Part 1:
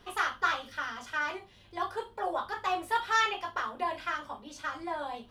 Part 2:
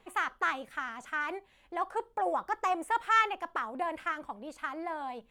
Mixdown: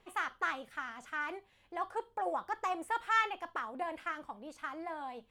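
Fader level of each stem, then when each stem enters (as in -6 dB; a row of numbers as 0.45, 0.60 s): -17.0, -4.5 dB; 0.00, 0.00 s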